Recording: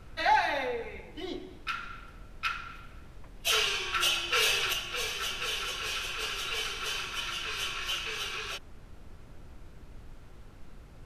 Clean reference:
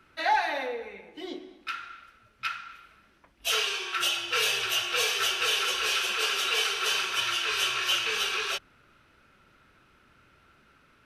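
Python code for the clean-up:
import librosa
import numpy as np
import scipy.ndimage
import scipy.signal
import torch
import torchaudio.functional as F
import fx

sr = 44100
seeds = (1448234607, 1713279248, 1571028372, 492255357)

y = fx.noise_reduce(x, sr, print_start_s=10.11, print_end_s=10.61, reduce_db=13.0)
y = fx.gain(y, sr, db=fx.steps((0.0, 0.0), (4.73, 7.0)))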